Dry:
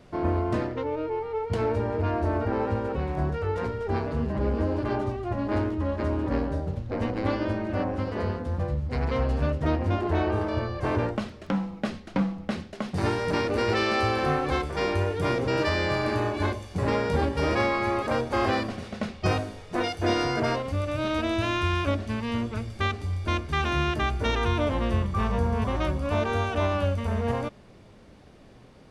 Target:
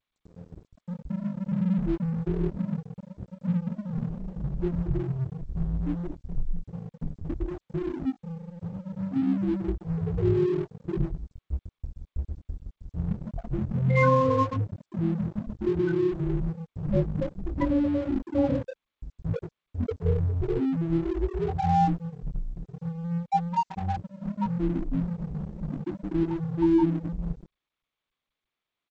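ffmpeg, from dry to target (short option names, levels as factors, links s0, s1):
-filter_complex "[0:a]aecho=1:1:43.73|125.4|169.1:0.708|0.398|0.631,afftfilt=real='re*gte(hypot(re,im),0.398)':imag='im*gte(hypot(re,im),0.398)':win_size=1024:overlap=0.75,asplit=2[s0][s1];[s1]acompressor=threshold=0.0251:ratio=10,volume=1.41[s2];[s0][s2]amix=inputs=2:normalize=0,lowshelf=f=85:g=-7.5,aresample=11025,aresample=44100,lowshelf=f=480:g=-8,dynaudnorm=f=300:g=5:m=3.55,flanger=delay=18.5:depth=4.5:speed=0.11,afreqshift=-260,aeval=exprs='sgn(val(0))*max(abs(val(0))-0.0178,0)':c=same,volume=0.631" -ar 16000 -c:a g722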